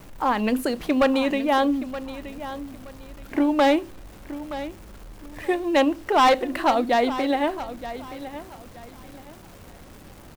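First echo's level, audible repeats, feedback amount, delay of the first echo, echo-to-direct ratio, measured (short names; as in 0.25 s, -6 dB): -13.5 dB, 2, 27%, 0.923 s, -13.0 dB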